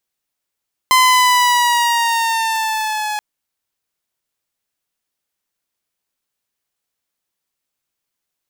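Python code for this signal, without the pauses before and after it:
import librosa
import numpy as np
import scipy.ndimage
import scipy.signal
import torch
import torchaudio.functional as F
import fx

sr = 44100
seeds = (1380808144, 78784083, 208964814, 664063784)

y = fx.riser_tone(sr, length_s=2.28, level_db=-5.5, wave='saw', hz=1030.0, rise_st=-3.5, swell_db=-11.5)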